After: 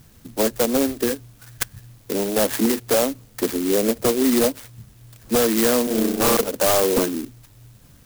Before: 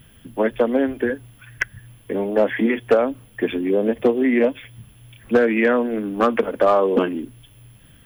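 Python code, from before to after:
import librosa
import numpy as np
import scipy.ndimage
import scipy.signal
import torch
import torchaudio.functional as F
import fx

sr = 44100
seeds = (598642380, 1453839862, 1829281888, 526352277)

y = fx.room_flutter(x, sr, wall_m=5.4, rt60_s=1.1, at=(5.84, 6.37))
y = 10.0 ** (-11.5 / 20.0) * (np.abs((y / 10.0 ** (-11.5 / 20.0) + 3.0) % 4.0 - 2.0) - 1.0)
y = fx.clock_jitter(y, sr, seeds[0], jitter_ms=0.13)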